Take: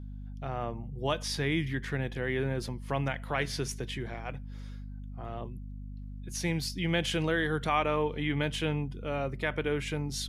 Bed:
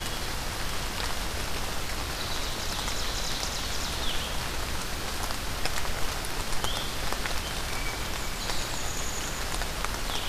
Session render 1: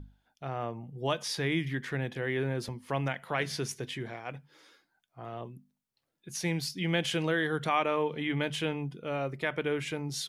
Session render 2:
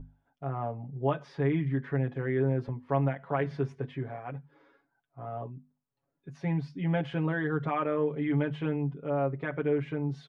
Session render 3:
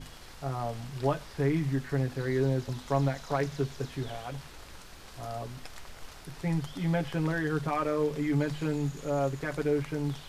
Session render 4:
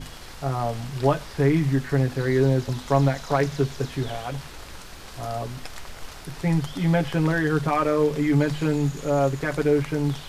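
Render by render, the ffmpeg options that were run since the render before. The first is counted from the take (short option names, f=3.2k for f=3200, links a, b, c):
-af "bandreject=f=50:t=h:w=6,bandreject=f=100:t=h:w=6,bandreject=f=150:t=h:w=6,bandreject=f=200:t=h:w=6,bandreject=f=250:t=h:w=6"
-af "lowpass=1.2k,aecho=1:1:7.2:0.85"
-filter_complex "[1:a]volume=-16.5dB[a];[0:a][a]amix=inputs=2:normalize=0"
-af "volume=7.5dB"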